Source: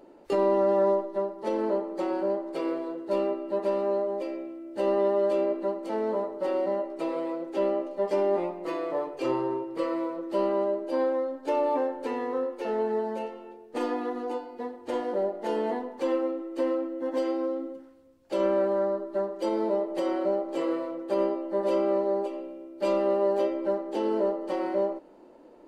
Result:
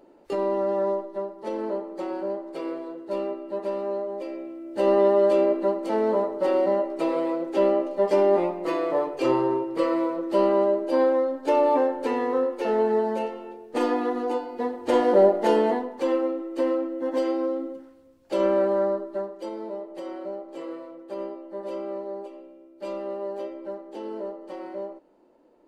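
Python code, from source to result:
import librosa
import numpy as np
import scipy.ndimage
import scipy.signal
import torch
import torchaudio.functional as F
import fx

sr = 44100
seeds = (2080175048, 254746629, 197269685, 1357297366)

y = fx.gain(x, sr, db=fx.line((4.12, -2.0), (4.92, 5.5), (14.35, 5.5), (15.31, 12.0), (15.9, 3.0), (18.92, 3.0), (19.56, -7.5)))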